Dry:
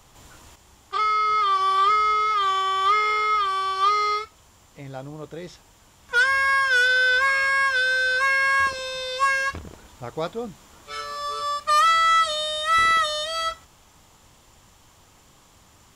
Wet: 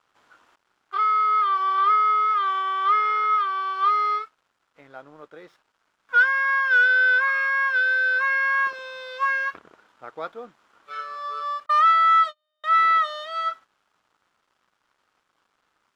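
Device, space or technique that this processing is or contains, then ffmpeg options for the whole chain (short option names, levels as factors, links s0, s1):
pocket radio on a weak battery: -filter_complex "[0:a]highpass=320,lowpass=3200,aeval=exprs='sgn(val(0))*max(abs(val(0))-0.00126,0)':c=same,equalizer=f=1400:t=o:w=0.56:g=9.5,asettb=1/sr,asplit=3[s0][s1][s2];[s0]atrim=end=11.664[s3];[s1]atrim=start=11.66:end=12.64,asetpts=PTS-STARTPTS,afade=t=in:d=0.004:c=qsin,afade=t=out:st=0.976:d=0.004:c=qsin,agate=range=0.00631:threshold=0.141:ratio=16:detection=peak[s4];[s2]atrim=start=12.636[s5];[s3][s4]acrossfade=d=0.004:c1=hsin:c2=qsin[s6];[s6][s5]acrossfade=d=0.004:c1=qsin:c2=hsin,volume=0.501"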